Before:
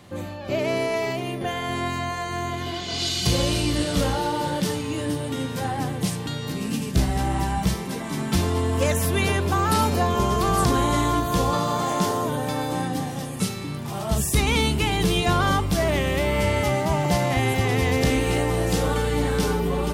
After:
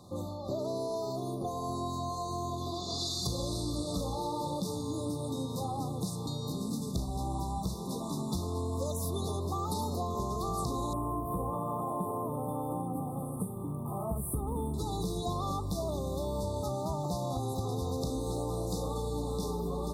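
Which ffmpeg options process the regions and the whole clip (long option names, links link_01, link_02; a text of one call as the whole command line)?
ffmpeg -i in.wav -filter_complex "[0:a]asettb=1/sr,asplit=3[link_01][link_02][link_03];[link_01]atrim=end=10.934[link_04];[link_02]atrim=start=10.93:end=14.74,asetpts=PTS-STARTPTS,afade=type=in:duration=0.004:curve=qsin,afade=type=out:start_time=3.806:duration=0.004:curve=qsin,equalizer=frequency=8100:width=2.8:gain=-5.5,acrusher=bits=8:mode=log:mix=0:aa=0.000001,asuperstop=centerf=5100:order=12:qfactor=0.94[link_05];[link_03]atrim=start=14.736[link_06];[link_04][link_05]acrossfade=duration=0.004:curve1=hsin:curve2=qsin[link_07];[link_07][link_06]acrossfade=duration=0.004:curve1=qsin:curve2=hsin,afftfilt=real='re*(1-between(b*sr/4096,1300,3500))':imag='im*(1-between(b*sr/4096,1300,3500))':win_size=4096:overlap=0.75,acompressor=threshold=-27dB:ratio=4,volume=-4.5dB" out.wav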